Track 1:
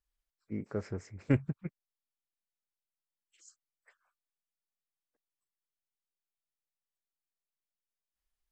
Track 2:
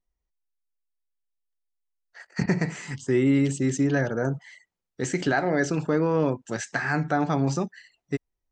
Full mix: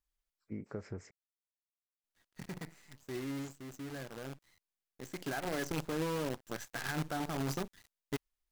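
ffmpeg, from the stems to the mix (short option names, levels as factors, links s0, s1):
-filter_complex "[0:a]acompressor=threshold=0.0158:ratio=6,volume=0.841,asplit=3[s0][s1][s2];[s0]atrim=end=1.11,asetpts=PTS-STARTPTS,afade=t=out:st=1.106:d=0.004:c=hsin[s3];[s1]atrim=start=1.11:end=2.04,asetpts=PTS-STARTPTS,volume=0[s4];[s2]atrim=start=2.04,asetpts=PTS-STARTPTS,afade=t=in:d=0.004:c=hsin[s5];[s3][s4][s5]concat=n=3:v=0:a=1,asplit=2[s6][s7];[1:a]bandreject=f=1800:w=21,acrusher=bits=5:dc=4:mix=0:aa=0.000001,volume=0.316,afade=t=in:st=5.07:d=0.65:silence=0.354813[s8];[s7]apad=whole_len=375725[s9];[s8][s9]sidechaincompress=threshold=0.00126:ratio=8:attack=7.8:release=1140[s10];[s6][s10]amix=inputs=2:normalize=0,alimiter=level_in=1.33:limit=0.0631:level=0:latency=1:release=43,volume=0.75"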